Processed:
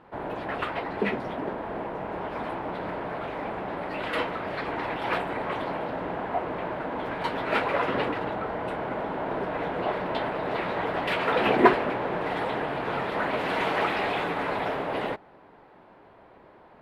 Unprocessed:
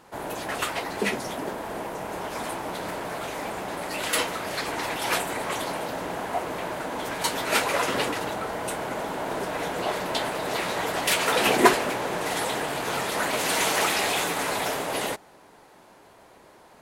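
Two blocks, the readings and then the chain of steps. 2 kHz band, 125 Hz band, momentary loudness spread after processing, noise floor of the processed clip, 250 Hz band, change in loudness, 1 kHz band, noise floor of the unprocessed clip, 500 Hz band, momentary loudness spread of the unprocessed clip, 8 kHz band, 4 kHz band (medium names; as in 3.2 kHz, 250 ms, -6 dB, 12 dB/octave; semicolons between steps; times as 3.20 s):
-3.0 dB, +1.0 dB, 8 LU, -53 dBFS, +1.0 dB, -2.0 dB, -0.5 dB, -53 dBFS, 0.0 dB, 10 LU, under -25 dB, -9.0 dB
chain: distance through air 450 m; trim +1.5 dB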